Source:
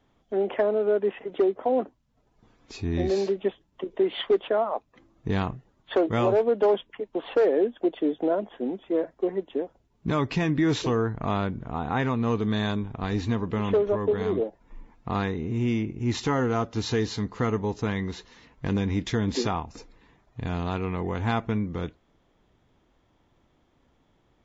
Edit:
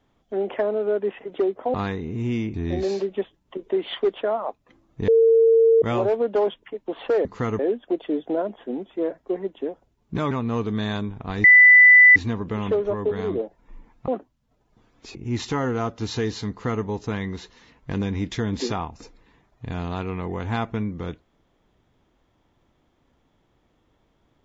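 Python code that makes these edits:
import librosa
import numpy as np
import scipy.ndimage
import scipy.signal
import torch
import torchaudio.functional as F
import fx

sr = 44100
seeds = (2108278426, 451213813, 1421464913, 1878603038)

y = fx.edit(x, sr, fx.swap(start_s=1.74, length_s=1.07, other_s=15.1, other_length_s=0.8),
    fx.bleep(start_s=5.35, length_s=0.74, hz=454.0, db=-12.0),
    fx.cut(start_s=10.24, length_s=1.81),
    fx.insert_tone(at_s=13.18, length_s=0.72, hz=1990.0, db=-7.5),
    fx.duplicate(start_s=17.25, length_s=0.34, to_s=7.52), tone=tone)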